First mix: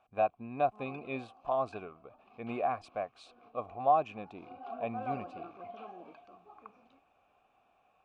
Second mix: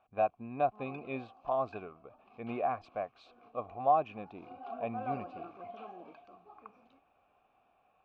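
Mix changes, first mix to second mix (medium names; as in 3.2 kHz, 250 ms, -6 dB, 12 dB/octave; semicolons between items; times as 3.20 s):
background: remove distance through air 140 m; master: add distance through air 170 m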